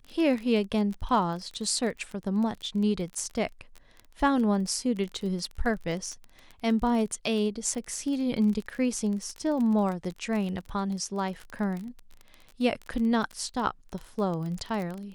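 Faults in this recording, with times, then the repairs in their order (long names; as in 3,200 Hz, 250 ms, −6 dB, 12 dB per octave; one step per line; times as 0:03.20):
surface crackle 26 per second −32 dBFS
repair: click removal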